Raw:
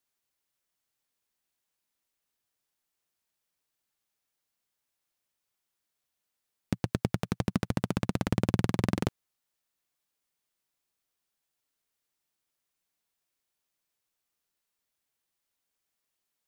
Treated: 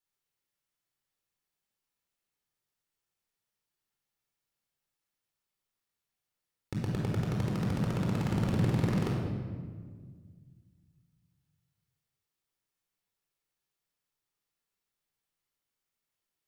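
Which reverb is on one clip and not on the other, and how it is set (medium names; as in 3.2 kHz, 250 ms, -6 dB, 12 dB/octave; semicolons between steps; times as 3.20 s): simulated room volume 2100 m³, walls mixed, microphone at 4.2 m; trim -9.5 dB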